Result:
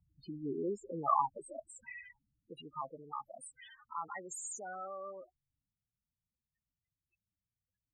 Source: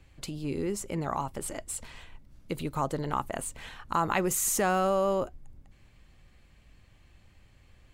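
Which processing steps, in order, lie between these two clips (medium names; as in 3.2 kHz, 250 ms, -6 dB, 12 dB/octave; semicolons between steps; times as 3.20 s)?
gain riding within 4 dB 2 s; loudest bins only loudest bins 8; band-pass sweep 860 Hz -> 3.8 kHz, 0.28–3.02 s; trim +9 dB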